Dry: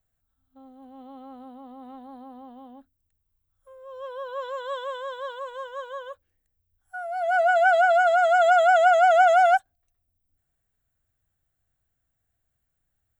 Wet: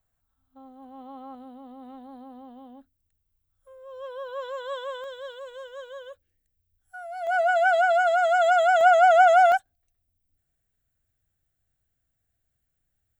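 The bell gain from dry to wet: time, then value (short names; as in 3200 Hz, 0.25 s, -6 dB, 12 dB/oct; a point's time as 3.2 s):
bell 1000 Hz 0.89 oct
+5.5 dB
from 1.35 s -3.5 dB
from 5.04 s -12.5 dB
from 7.27 s -4.5 dB
from 8.81 s +2 dB
from 9.52 s -5.5 dB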